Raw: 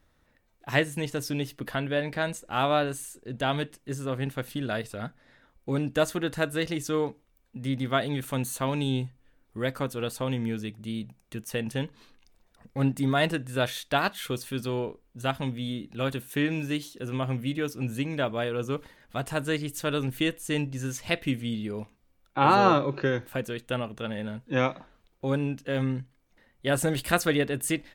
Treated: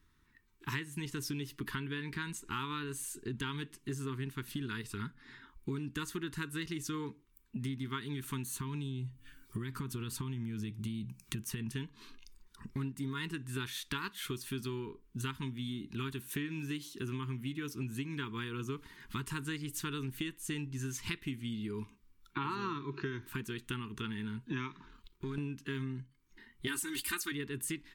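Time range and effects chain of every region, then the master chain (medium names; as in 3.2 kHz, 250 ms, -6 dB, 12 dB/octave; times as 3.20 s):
8.53–11.72 s: peaking EQ 120 Hz +6.5 dB 1.8 oct + compression 10:1, threshold -27 dBFS + tape noise reduction on one side only encoder only
24.73–25.38 s: partial rectifier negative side -3 dB + compression 2:1, threshold -47 dBFS + waveshaping leveller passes 1
26.67–27.32 s: tilt EQ +2 dB/octave + comb 3.3 ms, depth 90%
whole clip: spectral noise reduction 9 dB; elliptic band-stop 410–950 Hz, stop band 40 dB; compression 6:1, threshold -43 dBFS; trim +6.5 dB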